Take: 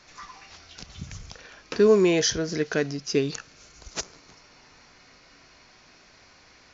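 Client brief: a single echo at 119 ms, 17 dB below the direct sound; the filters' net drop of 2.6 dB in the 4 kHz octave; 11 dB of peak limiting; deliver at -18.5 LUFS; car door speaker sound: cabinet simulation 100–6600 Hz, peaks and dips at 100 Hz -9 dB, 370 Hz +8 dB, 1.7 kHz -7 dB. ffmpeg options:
-af "equalizer=f=4000:t=o:g=-3,alimiter=limit=0.1:level=0:latency=1,highpass=100,equalizer=f=100:t=q:w=4:g=-9,equalizer=f=370:t=q:w=4:g=8,equalizer=f=1700:t=q:w=4:g=-7,lowpass=f=6600:w=0.5412,lowpass=f=6600:w=1.3066,aecho=1:1:119:0.141,volume=2.82"

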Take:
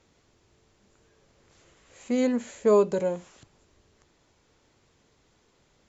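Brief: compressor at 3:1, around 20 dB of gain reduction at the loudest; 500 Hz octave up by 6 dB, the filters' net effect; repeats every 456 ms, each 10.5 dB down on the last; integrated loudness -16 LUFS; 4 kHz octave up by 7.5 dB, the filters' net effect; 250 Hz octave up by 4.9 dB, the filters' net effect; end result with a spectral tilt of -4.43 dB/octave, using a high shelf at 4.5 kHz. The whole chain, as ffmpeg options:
-af "equalizer=f=250:t=o:g=4,equalizer=f=500:t=o:g=6,equalizer=f=4000:t=o:g=5.5,highshelf=f=4500:g=7,acompressor=threshold=0.0112:ratio=3,aecho=1:1:456|912|1368:0.299|0.0896|0.0269,volume=13.3"

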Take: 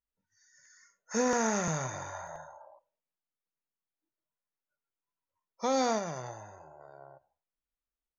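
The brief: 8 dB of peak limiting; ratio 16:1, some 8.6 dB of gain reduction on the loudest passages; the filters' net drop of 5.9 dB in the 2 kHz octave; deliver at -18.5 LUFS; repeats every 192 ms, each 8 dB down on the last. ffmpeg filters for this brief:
-af "equalizer=f=2000:t=o:g=-8,acompressor=threshold=0.0251:ratio=16,alimiter=level_in=2:limit=0.0631:level=0:latency=1,volume=0.501,aecho=1:1:192|384|576|768|960:0.398|0.159|0.0637|0.0255|0.0102,volume=15.8"

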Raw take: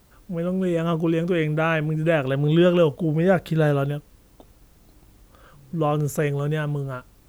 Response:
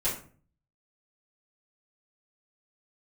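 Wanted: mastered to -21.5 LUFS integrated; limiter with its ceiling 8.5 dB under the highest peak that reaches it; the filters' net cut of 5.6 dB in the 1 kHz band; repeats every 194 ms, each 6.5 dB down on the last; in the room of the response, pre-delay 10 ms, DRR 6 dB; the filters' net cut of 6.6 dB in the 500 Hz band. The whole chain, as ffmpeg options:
-filter_complex "[0:a]equalizer=f=500:t=o:g=-7,equalizer=f=1000:t=o:g=-5.5,alimiter=limit=0.112:level=0:latency=1,aecho=1:1:194|388|582|776|970|1164:0.473|0.222|0.105|0.0491|0.0231|0.0109,asplit=2[s0][s1];[1:a]atrim=start_sample=2205,adelay=10[s2];[s1][s2]afir=irnorm=-1:irlink=0,volume=0.211[s3];[s0][s3]amix=inputs=2:normalize=0,volume=1.5"

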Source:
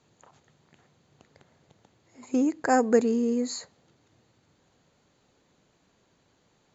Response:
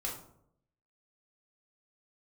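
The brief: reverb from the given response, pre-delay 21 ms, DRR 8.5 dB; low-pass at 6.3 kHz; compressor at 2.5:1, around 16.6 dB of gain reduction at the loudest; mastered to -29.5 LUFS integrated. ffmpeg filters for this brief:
-filter_complex "[0:a]lowpass=6300,acompressor=threshold=0.00794:ratio=2.5,asplit=2[s0][s1];[1:a]atrim=start_sample=2205,adelay=21[s2];[s1][s2]afir=irnorm=-1:irlink=0,volume=0.299[s3];[s0][s3]amix=inputs=2:normalize=0,volume=2.99"

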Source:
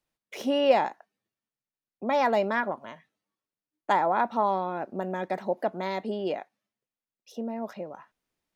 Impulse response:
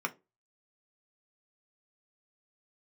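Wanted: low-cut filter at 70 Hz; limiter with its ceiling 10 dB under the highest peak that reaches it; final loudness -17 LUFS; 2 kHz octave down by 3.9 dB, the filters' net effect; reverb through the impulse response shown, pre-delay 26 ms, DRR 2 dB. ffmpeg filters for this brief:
-filter_complex "[0:a]highpass=70,equalizer=f=2000:t=o:g=-5,alimiter=limit=0.112:level=0:latency=1,asplit=2[s0][s1];[1:a]atrim=start_sample=2205,adelay=26[s2];[s1][s2]afir=irnorm=-1:irlink=0,volume=0.398[s3];[s0][s3]amix=inputs=2:normalize=0,volume=4.22"

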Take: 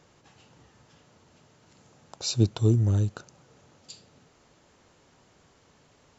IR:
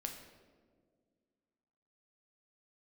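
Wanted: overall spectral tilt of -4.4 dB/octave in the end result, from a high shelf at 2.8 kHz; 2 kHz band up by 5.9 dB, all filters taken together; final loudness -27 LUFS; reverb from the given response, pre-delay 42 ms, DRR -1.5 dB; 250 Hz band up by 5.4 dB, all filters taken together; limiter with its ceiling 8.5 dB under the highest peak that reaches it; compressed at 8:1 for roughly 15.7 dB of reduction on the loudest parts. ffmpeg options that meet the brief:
-filter_complex "[0:a]equalizer=f=250:t=o:g=7,equalizer=f=2000:t=o:g=6,highshelf=f=2800:g=5.5,acompressor=threshold=0.0355:ratio=8,alimiter=level_in=1.58:limit=0.0631:level=0:latency=1,volume=0.631,asplit=2[s0][s1];[1:a]atrim=start_sample=2205,adelay=42[s2];[s1][s2]afir=irnorm=-1:irlink=0,volume=1.41[s3];[s0][s3]amix=inputs=2:normalize=0,volume=4.47"

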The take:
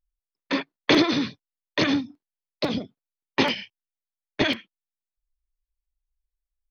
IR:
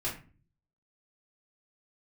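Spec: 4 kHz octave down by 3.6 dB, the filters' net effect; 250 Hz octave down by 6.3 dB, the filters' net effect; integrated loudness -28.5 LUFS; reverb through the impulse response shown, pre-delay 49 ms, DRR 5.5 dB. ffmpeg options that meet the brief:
-filter_complex "[0:a]equalizer=f=250:t=o:g=-8,equalizer=f=4000:t=o:g=-4.5,asplit=2[s0][s1];[1:a]atrim=start_sample=2205,adelay=49[s2];[s1][s2]afir=irnorm=-1:irlink=0,volume=0.316[s3];[s0][s3]amix=inputs=2:normalize=0,volume=0.891"

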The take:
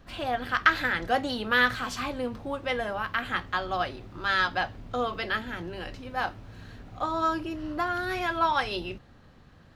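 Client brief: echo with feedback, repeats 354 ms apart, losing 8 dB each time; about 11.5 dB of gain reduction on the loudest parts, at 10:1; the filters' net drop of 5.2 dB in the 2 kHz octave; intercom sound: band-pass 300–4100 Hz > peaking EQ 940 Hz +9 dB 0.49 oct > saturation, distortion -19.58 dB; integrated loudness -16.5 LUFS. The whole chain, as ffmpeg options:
-af "equalizer=f=2000:t=o:g=-8,acompressor=threshold=0.0316:ratio=10,highpass=300,lowpass=4100,equalizer=f=940:t=o:w=0.49:g=9,aecho=1:1:354|708|1062|1416|1770:0.398|0.159|0.0637|0.0255|0.0102,asoftclip=threshold=0.0794,volume=7.94"

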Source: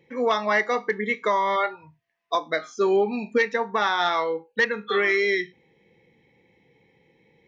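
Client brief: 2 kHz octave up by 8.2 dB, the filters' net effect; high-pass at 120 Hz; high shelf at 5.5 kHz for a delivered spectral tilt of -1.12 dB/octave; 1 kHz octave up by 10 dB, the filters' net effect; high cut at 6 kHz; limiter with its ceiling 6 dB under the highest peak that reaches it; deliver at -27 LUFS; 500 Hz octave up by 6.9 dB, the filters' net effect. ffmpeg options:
-af "highpass=120,lowpass=6000,equalizer=f=500:t=o:g=6.5,equalizer=f=1000:t=o:g=8.5,equalizer=f=2000:t=o:g=7.5,highshelf=f=5500:g=-8,volume=0.376,alimiter=limit=0.141:level=0:latency=1"

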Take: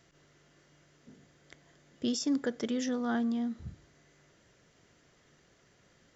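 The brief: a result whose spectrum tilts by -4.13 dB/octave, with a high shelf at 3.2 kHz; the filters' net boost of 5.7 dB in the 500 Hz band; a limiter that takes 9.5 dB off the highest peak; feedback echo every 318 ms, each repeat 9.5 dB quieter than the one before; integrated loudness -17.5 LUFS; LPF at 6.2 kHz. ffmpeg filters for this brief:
-af "lowpass=6200,equalizer=f=500:t=o:g=6,highshelf=f=3200:g=5.5,alimiter=level_in=1.19:limit=0.0631:level=0:latency=1,volume=0.841,aecho=1:1:318|636|954|1272:0.335|0.111|0.0365|0.012,volume=7.08"

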